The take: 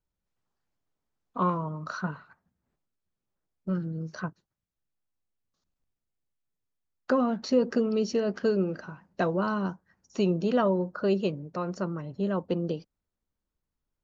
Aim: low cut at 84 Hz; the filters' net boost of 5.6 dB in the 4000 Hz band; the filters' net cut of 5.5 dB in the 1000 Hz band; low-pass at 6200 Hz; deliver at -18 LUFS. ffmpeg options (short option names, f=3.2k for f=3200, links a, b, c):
-af "highpass=84,lowpass=6.2k,equalizer=f=1k:t=o:g=-7.5,equalizer=f=4k:t=o:g=8.5,volume=12dB"